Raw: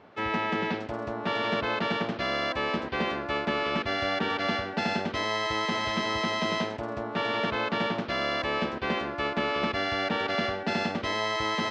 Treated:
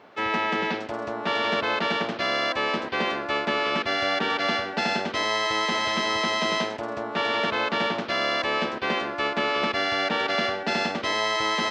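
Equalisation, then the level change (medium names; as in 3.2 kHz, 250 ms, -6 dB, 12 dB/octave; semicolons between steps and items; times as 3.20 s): high-pass 300 Hz 6 dB/octave; treble shelf 5.8 kHz +5.5 dB; +4.0 dB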